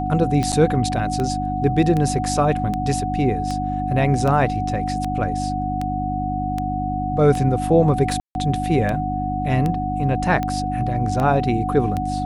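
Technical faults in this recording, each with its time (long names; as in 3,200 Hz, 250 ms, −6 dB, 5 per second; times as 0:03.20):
mains hum 50 Hz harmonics 6 −26 dBFS
scratch tick 78 rpm −12 dBFS
whistle 740 Hz −24 dBFS
0:00.52–0:00.53: drop-out 6.9 ms
0:08.20–0:08.35: drop-out 151 ms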